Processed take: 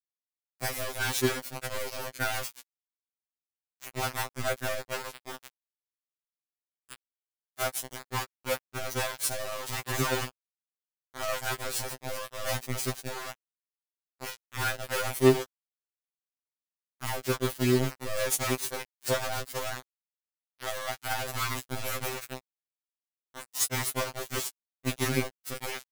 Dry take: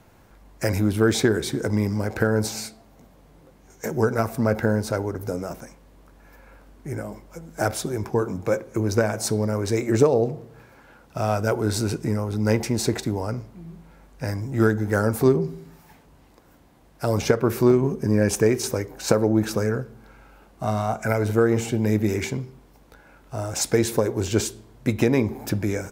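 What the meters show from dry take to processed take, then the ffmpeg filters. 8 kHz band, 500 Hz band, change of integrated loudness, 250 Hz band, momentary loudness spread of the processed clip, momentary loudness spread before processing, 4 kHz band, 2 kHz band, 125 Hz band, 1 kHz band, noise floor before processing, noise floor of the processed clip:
-2.5 dB, -10.5 dB, -8.0 dB, -13.5 dB, 14 LU, 14 LU, -1.0 dB, -3.0 dB, -12.5 dB, -4.5 dB, -54 dBFS, under -85 dBFS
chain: -af "equalizer=f=11k:t=o:w=0.48:g=12,aeval=exprs='val(0)*gte(abs(val(0)),0.119)':c=same,tiltshelf=f=970:g=-4,afftfilt=real='re*2.45*eq(mod(b,6),0)':imag='im*2.45*eq(mod(b,6),0)':win_size=2048:overlap=0.75,volume=-4dB"

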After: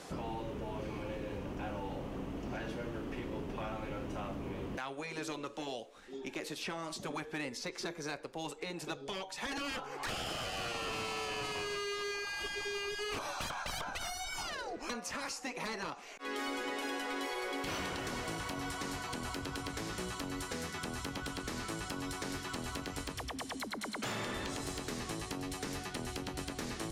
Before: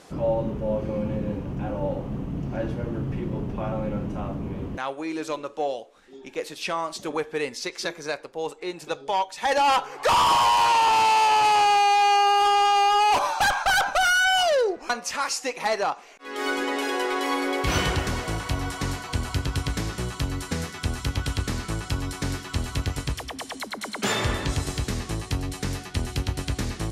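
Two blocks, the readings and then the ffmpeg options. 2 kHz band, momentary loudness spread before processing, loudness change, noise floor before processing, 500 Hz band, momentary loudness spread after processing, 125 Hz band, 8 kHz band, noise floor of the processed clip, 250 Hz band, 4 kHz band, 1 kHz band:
-13.0 dB, 13 LU, -15.0 dB, -45 dBFS, -13.0 dB, 4 LU, -16.0 dB, -10.5 dB, -49 dBFS, -10.0 dB, -12.5 dB, -20.5 dB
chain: -filter_complex "[0:a]afftfilt=real='re*lt(hypot(re,im),0.251)':imag='im*lt(hypot(re,im),0.251)':win_size=1024:overlap=0.75,acrossover=split=310|1600[a][b][c];[a]acompressor=threshold=-44dB:ratio=4[d];[b]acompressor=threshold=-43dB:ratio=4[e];[c]acompressor=threshold=-44dB:ratio=4[f];[d][e][f]amix=inputs=3:normalize=0,asplit=2[g][h];[h]aeval=exprs='0.0224*(abs(mod(val(0)/0.0224+3,4)-2)-1)':c=same,volume=-6dB[i];[g][i]amix=inputs=2:normalize=0,volume=-3dB"

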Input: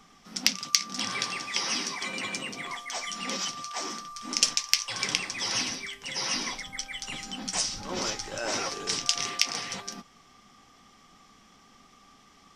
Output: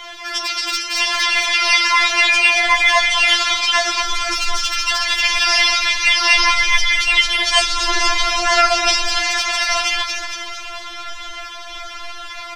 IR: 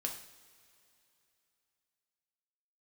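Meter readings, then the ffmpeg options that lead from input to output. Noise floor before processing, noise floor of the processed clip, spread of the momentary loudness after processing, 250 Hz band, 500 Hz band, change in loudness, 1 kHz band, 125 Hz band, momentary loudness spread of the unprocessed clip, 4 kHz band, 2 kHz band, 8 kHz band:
-58 dBFS, -32 dBFS, 18 LU, +3.5 dB, +14.5 dB, +15.0 dB, +18.0 dB, n/a, 10 LU, +14.0 dB, +20.5 dB, +7.0 dB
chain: -filter_complex "[0:a]asubboost=boost=10:cutoff=67,acontrast=70,flanger=delay=0.6:depth=6:regen=84:speed=1.5:shape=sinusoidal,acrossover=split=130[a][b];[b]acompressor=threshold=-42dB:ratio=2.5[c];[a][c]amix=inputs=2:normalize=0,acrossover=split=500 3600:gain=0.0891 1 0.0631[d][e][f];[d][e][f]amix=inputs=3:normalize=0,aeval=exprs='(tanh(7.94*val(0)+0.5)-tanh(0.5))/7.94':c=same,crystalizer=i=2.5:c=0,asplit=2[g][h];[h]asplit=8[i][j][k][l][m][n][o][p];[i]adelay=228,afreqshift=60,volume=-4.5dB[q];[j]adelay=456,afreqshift=120,volume=-9.2dB[r];[k]adelay=684,afreqshift=180,volume=-14dB[s];[l]adelay=912,afreqshift=240,volume=-18.7dB[t];[m]adelay=1140,afreqshift=300,volume=-23.4dB[u];[n]adelay=1368,afreqshift=360,volume=-28.2dB[v];[o]adelay=1596,afreqshift=420,volume=-32.9dB[w];[p]adelay=1824,afreqshift=480,volume=-37.6dB[x];[q][r][s][t][u][v][w][x]amix=inputs=8:normalize=0[y];[g][y]amix=inputs=2:normalize=0,alimiter=level_in=28dB:limit=-1dB:release=50:level=0:latency=1,afftfilt=real='re*4*eq(mod(b,16),0)':imag='im*4*eq(mod(b,16),0)':win_size=2048:overlap=0.75,volume=1.5dB"

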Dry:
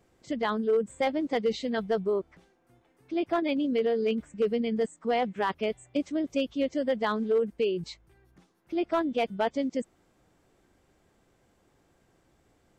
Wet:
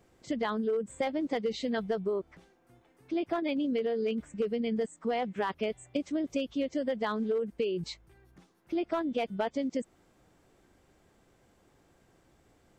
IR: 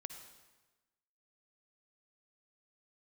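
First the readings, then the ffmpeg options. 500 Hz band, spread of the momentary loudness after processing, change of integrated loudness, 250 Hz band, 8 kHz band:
-4.0 dB, 6 LU, -3.5 dB, -2.5 dB, n/a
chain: -af "acompressor=threshold=-29dB:ratio=6,volume=1.5dB"

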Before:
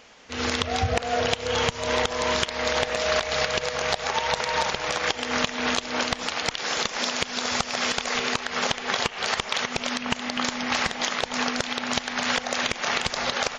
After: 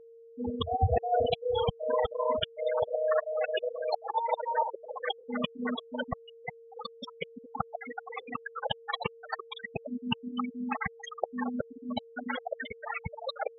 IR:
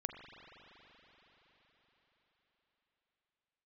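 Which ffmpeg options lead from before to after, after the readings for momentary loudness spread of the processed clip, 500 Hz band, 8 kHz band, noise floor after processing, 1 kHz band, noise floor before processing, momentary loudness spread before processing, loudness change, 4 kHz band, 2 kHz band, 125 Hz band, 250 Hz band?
12 LU, -2.5 dB, under -35 dB, -53 dBFS, -5.5 dB, -38 dBFS, 2 LU, -8.0 dB, -14.5 dB, -14.0 dB, -3.0 dB, -4.5 dB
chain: -af "afftfilt=real='re*gte(hypot(re,im),0.2)':imag='im*gte(hypot(re,im),0.2)':win_size=1024:overlap=0.75,aeval=exprs='val(0)+0.00316*sin(2*PI*460*n/s)':c=same"

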